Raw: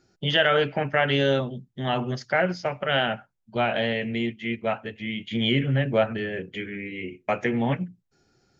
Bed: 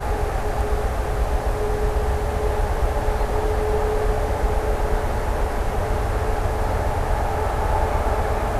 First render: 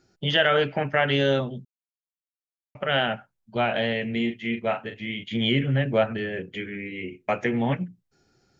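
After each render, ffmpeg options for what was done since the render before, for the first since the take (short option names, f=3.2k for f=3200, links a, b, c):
-filter_complex "[0:a]asettb=1/sr,asplit=3[a][b][c];[a]atrim=end=4.124[d];[b]atrim=start=4.12:end=5.24,asetpts=PTS-STARTPTS,afade=t=in:d=0.004:c=qsin,afade=t=out:st=1.116:d=0.004:c=qsin,asplit=2[e][f];[f]adelay=39,volume=-7.5dB[g];[e][g]amix=inputs=2:normalize=0,atrim=end_sample=49392[h];[c]atrim=start=5.236[i];[d][h]acrossfade=d=0.004:c1=hsin:c2=qsin[j];[j][i]acrossfade=d=0.004:c1=qsin:c2=hsin,asplit=3[k][l][m];[k]atrim=end=1.65,asetpts=PTS-STARTPTS,afade=t=out:st=1.646:d=0.004:c=hsin[n];[l]atrim=start=1.65:end=2.75,asetpts=PTS-STARTPTS,volume=0[o];[m]atrim=start=2.75,asetpts=PTS-STARTPTS,afade=t=in:d=0.004:c=hsin[p];[n][o][p]concat=n=3:v=0:a=1"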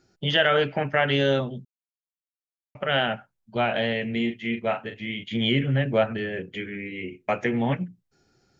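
-af anull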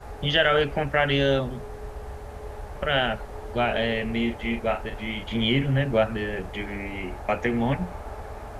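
-filter_complex "[1:a]volume=-15.5dB[a];[0:a][a]amix=inputs=2:normalize=0"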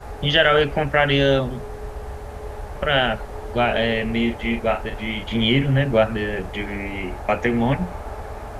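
-af "volume=4.5dB"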